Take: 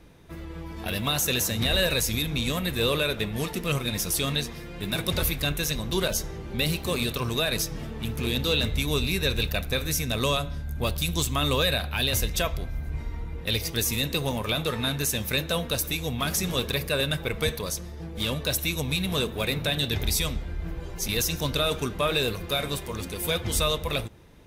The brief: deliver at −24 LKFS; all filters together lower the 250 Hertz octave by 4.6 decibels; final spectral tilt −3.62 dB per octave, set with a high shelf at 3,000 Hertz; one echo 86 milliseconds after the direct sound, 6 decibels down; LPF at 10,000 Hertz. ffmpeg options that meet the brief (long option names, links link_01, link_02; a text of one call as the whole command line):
ffmpeg -i in.wav -af "lowpass=10000,equalizer=frequency=250:width_type=o:gain=-7,highshelf=frequency=3000:gain=-3.5,aecho=1:1:86:0.501,volume=4dB" out.wav